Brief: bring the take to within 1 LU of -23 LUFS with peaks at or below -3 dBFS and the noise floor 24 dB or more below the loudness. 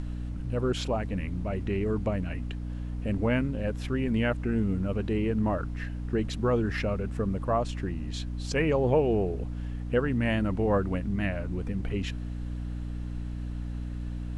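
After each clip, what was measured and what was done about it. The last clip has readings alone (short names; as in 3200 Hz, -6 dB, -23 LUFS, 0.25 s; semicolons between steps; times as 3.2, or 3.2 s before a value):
hum 60 Hz; harmonics up to 300 Hz; hum level -32 dBFS; noise floor -35 dBFS; noise floor target -54 dBFS; loudness -30.0 LUFS; peak -13.0 dBFS; loudness target -23.0 LUFS
-> de-hum 60 Hz, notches 5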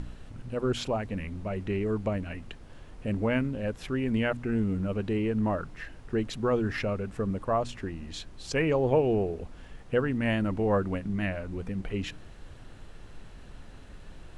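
hum none; noise floor -47 dBFS; noise floor target -54 dBFS
-> noise print and reduce 7 dB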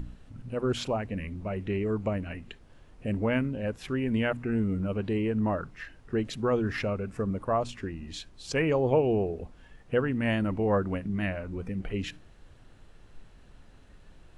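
noise floor -54 dBFS; loudness -30.0 LUFS; peak -13.0 dBFS; loudness target -23.0 LUFS
-> gain +7 dB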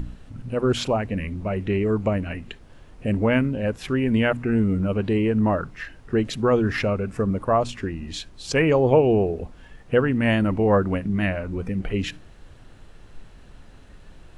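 loudness -23.0 LUFS; peak -6.0 dBFS; noise floor -47 dBFS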